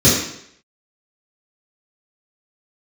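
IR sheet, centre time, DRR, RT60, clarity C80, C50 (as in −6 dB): 52 ms, −10.5 dB, 0.70 s, 5.5 dB, 2.0 dB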